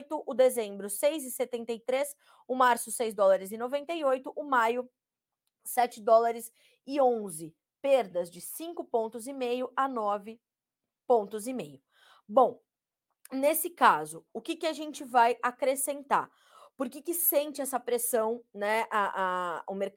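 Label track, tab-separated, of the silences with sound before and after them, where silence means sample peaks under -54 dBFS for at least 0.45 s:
4.870000	5.650000	silence
10.360000	11.090000	silence
12.580000	13.250000	silence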